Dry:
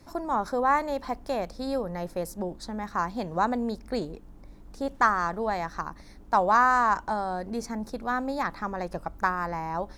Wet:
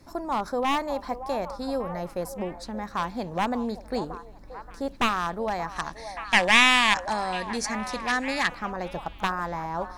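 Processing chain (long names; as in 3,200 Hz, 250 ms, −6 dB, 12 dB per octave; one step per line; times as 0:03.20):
wavefolder on the positive side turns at −20 dBFS
echo through a band-pass that steps 578 ms, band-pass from 730 Hz, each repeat 0.7 octaves, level −9 dB
gain on a spectral selection 0:05.76–0:08.48, 1,600–11,000 Hz +11 dB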